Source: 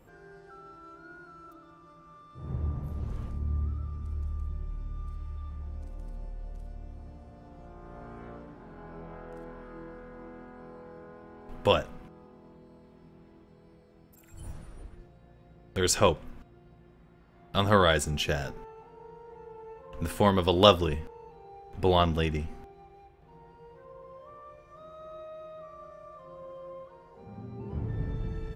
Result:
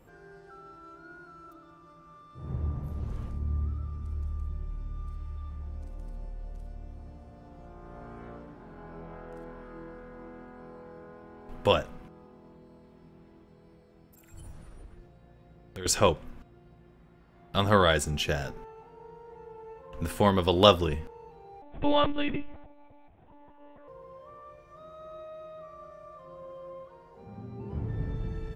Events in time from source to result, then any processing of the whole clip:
14.39–15.86 s: compression 2:1, threshold -44 dBFS
21.62–23.88 s: monotone LPC vocoder at 8 kHz 290 Hz

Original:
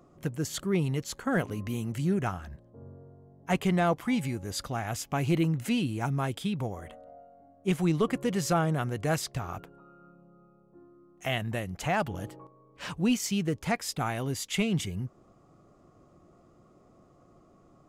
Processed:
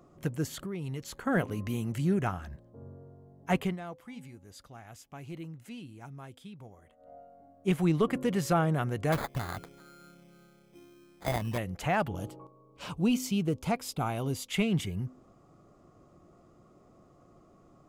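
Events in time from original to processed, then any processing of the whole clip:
0.52–1.18 s: compression, threshold -33 dBFS
3.60–7.14 s: dip -16 dB, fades 0.17 s
9.12–11.58 s: sample-rate reducer 2.8 kHz
12.09–14.49 s: peaking EQ 1.8 kHz -13 dB 0.39 oct
whole clip: de-hum 255.7 Hz, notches 2; dynamic bell 6.3 kHz, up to -6 dB, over -50 dBFS, Q 0.86

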